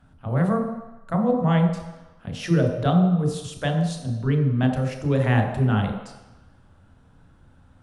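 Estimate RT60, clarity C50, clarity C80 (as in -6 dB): 1.0 s, 5.0 dB, 7.0 dB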